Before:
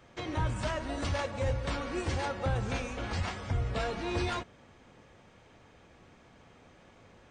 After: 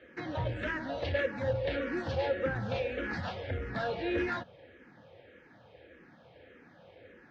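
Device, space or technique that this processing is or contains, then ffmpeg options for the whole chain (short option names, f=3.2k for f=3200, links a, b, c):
barber-pole phaser into a guitar amplifier: -filter_complex "[0:a]asplit=2[a][b];[b]afreqshift=-1.7[c];[a][c]amix=inputs=2:normalize=1,asoftclip=type=tanh:threshold=-27dB,highpass=82,equalizer=f=310:t=q:w=4:g=4,equalizer=f=520:t=q:w=4:g=9,equalizer=f=1.1k:t=q:w=4:g=-7,equalizer=f=1.7k:t=q:w=4:g=8,lowpass=f=4.3k:w=0.5412,lowpass=f=4.3k:w=1.3066,volume=2dB"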